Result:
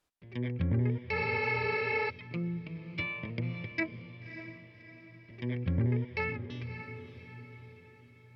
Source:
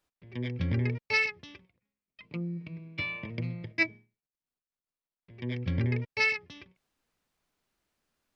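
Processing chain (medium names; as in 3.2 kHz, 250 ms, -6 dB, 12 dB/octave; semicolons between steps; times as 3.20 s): low-pass that closes with the level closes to 1.2 kHz, closed at -27 dBFS; echo that smears into a reverb 589 ms, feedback 46%, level -10 dB; spectral replace 1.18–2.07 s, 250–5500 Hz before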